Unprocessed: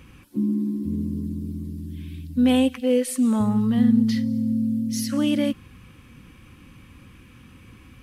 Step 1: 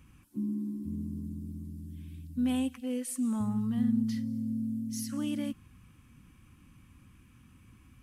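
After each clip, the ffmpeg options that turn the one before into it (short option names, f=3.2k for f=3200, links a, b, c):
-af "equalizer=f=500:t=o:w=1:g=-10,equalizer=f=2k:t=o:w=1:g=-4,equalizer=f=4k:t=o:w=1:g=-6,equalizer=f=8k:t=o:w=1:g=3,volume=-8.5dB"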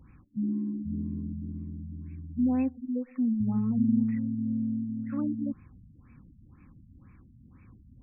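-af "afftfilt=real='re*lt(b*sr/1024,250*pow(2700/250,0.5+0.5*sin(2*PI*2*pts/sr)))':imag='im*lt(b*sr/1024,250*pow(2700/250,0.5+0.5*sin(2*PI*2*pts/sr)))':win_size=1024:overlap=0.75,volume=3.5dB"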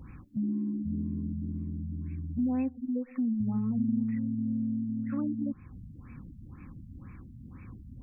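-af "acompressor=threshold=-43dB:ratio=2,volume=7.5dB"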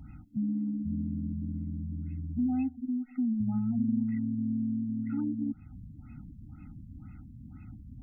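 -af "afftfilt=real='re*eq(mod(floor(b*sr/1024/310),2),0)':imag='im*eq(mod(floor(b*sr/1024/310),2),0)':win_size=1024:overlap=0.75"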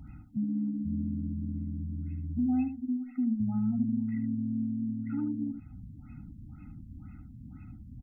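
-af "aecho=1:1:75:0.316"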